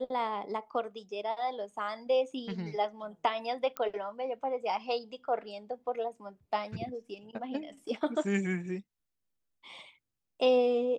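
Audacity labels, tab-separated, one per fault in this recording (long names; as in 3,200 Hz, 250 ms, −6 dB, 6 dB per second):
3.770000	3.770000	click −19 dBFS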